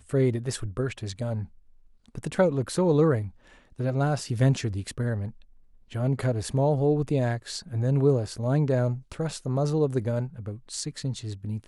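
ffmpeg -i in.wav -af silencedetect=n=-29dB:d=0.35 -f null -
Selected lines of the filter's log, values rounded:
silence_start: 1.43
silence_end: 2.15 | silence_duration: 0.72
silence_start: 3.27
silence_end: 3.80 | silence_duration: 0.53
silence_start: 5.29
silence_end: 5.95 | silence_duration: 0.67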